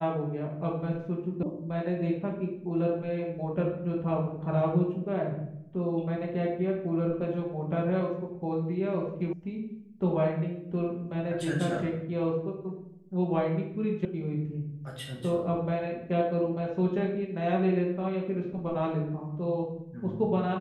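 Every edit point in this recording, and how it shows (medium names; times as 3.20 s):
1.43 s: sound stops dead
9.33 s: sound stops dead
14.05 s: sound stops dead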